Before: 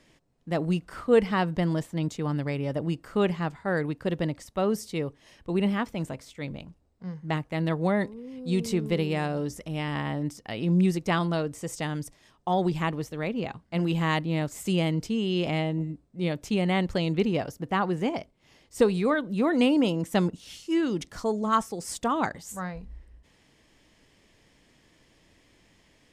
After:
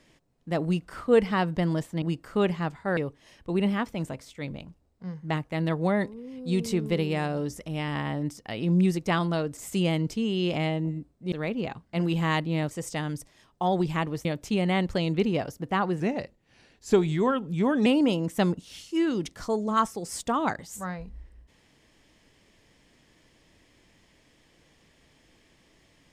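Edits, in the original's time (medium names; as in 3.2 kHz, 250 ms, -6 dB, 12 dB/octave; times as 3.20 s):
2.02–2.82 s: delete
3.77–4.97 s: delete
11.57–13.11 s: swap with 14.50–16.25 s
18.00–19.62 s: speed 87%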